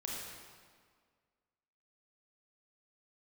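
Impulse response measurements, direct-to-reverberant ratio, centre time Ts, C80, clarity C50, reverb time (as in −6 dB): −3.5 dB, 106 ms, 1.0 dB, −1.0 dB, 1.8 s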